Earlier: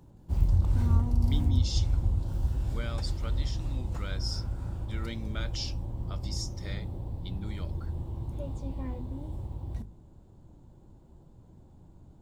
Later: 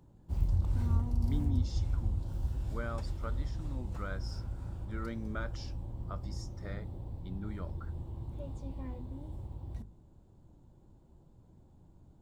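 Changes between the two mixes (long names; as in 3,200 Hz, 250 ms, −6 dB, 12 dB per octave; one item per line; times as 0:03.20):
speech: add high shelf with overshoot 2,000 Hz −12.5 dB, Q 1.5
background −5.5 dB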